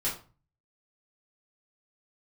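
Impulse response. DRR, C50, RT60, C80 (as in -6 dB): -9.0 dB, 8.0 dB, 0.35 s, 13.5 dB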